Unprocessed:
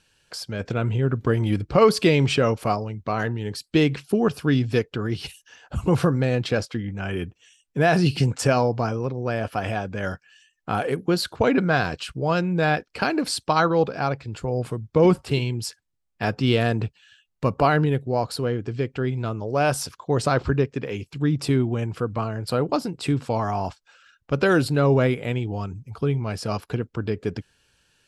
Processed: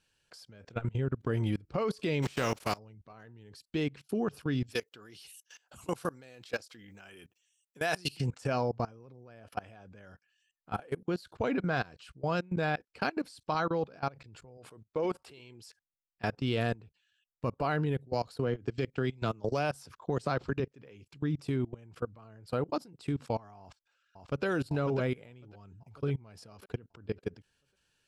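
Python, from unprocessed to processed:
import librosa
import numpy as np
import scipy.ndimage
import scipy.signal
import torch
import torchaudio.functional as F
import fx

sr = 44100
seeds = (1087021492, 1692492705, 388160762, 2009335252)

y = fx.spec_flatten(x, sr, power=0.55, at=(2.22, 2.77), fade=0.02)
y = fx.riaa(y, sr, side='recording', at=(4.66, 8.16), fade=0.02)
y = fx.bass_treble(y, sr, bass_db=-13, treble_db=-1, at=(14.57, 15.66))
y = fx.band_squash(y, sr, depth_pct=100, at=(18.13, 20.6))
y = fx.echo_throw(y, sr, start_s=23.6, length_s=0.85, ms=550, feedback_pct=45, wet_db=-3.5)
y = fx.level_steps(y, sr, step_db=23)
y = y * 10.0 ** (-6.5 / 20.0)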